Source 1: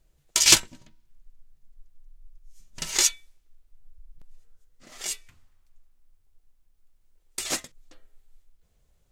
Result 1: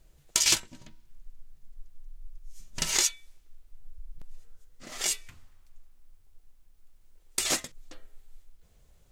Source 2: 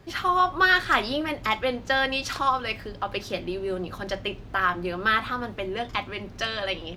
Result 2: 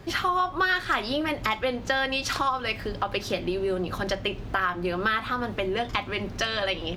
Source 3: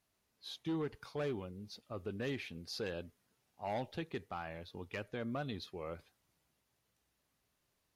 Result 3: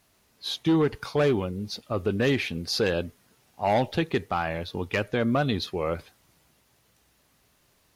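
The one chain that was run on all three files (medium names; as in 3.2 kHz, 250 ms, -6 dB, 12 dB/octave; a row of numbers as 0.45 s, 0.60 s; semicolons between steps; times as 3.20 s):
compression 3:1, threshold -31 dBFS; normalise loudness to -27 LUFS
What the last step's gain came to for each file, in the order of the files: +6.0 dB, +6.0 dB, +15.5 dB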